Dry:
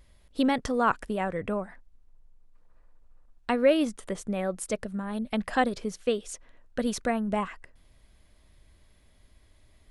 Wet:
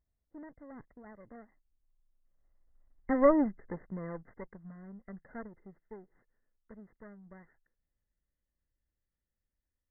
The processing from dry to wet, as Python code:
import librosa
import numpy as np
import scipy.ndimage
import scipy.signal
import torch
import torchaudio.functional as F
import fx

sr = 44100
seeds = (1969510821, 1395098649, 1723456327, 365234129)

y = fx.lower_of_two(x, sr, delay_ms=0.41)
y = fx.doppler_pass(y, sr, speed_mps=40, closest_m=8.5, pass_at_s=3.32)
y = fx.brickwall_lowpass(y, sr, high_hz=2100.0)